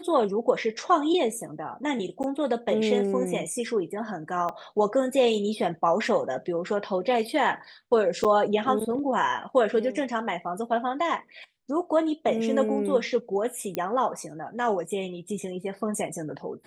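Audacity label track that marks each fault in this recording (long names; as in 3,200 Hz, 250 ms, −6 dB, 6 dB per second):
2.230000	2.240000	drop-out 9.2 ms
4.490000	4.490000	drop-out 4.6 ms
8.240000	8.250000	drop-out 7.1 ms
13.750000	13.750000	click −14 dBFS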